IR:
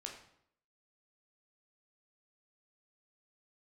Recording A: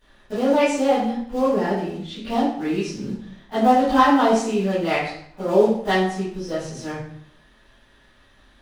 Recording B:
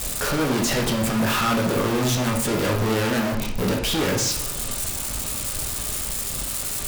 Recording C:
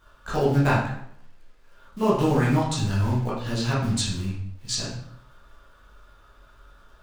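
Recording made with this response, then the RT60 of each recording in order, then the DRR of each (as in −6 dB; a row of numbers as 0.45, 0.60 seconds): B; 0.70, 0.70, 0.70 seconds; −16.5, 0.5, −7.5 decibels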